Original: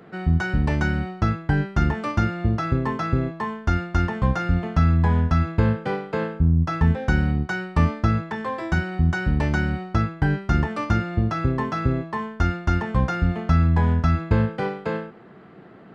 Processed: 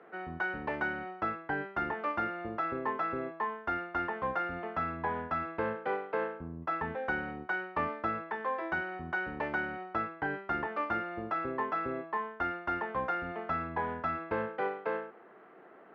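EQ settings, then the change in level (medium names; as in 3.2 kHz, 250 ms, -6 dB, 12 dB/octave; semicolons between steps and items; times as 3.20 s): distance through air 170 m; three-band isolator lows -19 dB, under 320 Hz, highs -16 dB, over 2.8 kHz; bass shelf 170 Hz -10.5 dB; -3.0 dB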